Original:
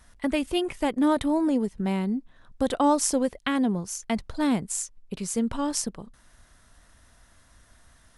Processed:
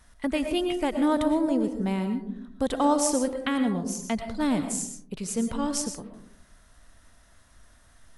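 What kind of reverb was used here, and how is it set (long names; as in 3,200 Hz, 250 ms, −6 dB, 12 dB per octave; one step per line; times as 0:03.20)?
comb and all-pass reverb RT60 0.62 s, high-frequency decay 0.3×, pre-delay 75 ms, DRR 6.5 dB
level −1.5 dB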